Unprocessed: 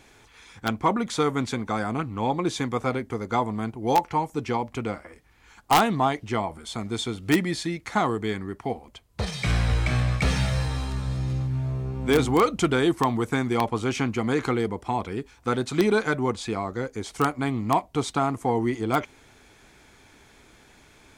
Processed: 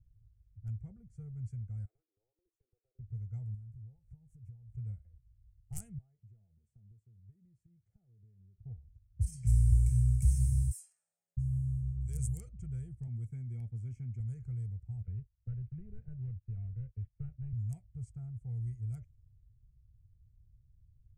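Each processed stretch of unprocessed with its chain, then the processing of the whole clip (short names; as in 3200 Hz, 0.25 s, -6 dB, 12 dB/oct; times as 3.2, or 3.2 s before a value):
1.85–2.99 steep high-pass 300 Hz 96 dB/oct + compressor 16:1, threshold -39 dBFS
3.54–4.76 switching spikes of -22 dBFS + bell 15000 Hz -13 dB 2 oct + compressor 12:1, threshold -34 dBFS
5.98–8.58 HPF 240 Hz + compressor, threshold -36 dBFS
10.71–11.37 HPF 720 Hz 24 dB/oct + bell 12000 Hz +10 dB 1.6 oct + frequency shift +40 Hz
13.07–14.2 low shelf 84 Hz -10.5 dB + small resonant body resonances 270/2200/3300 Hz, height 11 dB, ringing for 30 ms
15.02–17.53 CVSD 16 kbps + gate -41 dBFS, range -23 dB + three-band squash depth 70%
whole clip: elliptic band-stop 110–8500 Hz, stop band 40 dB; low-pass opened by the level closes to 550 Hz, open at -28.5 dBFS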